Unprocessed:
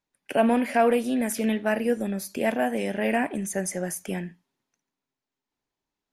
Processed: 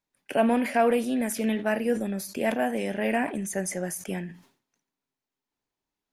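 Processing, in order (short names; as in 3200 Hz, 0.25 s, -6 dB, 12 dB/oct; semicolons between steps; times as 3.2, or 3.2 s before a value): sustainer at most 130 dB/s; gain -1.5 dB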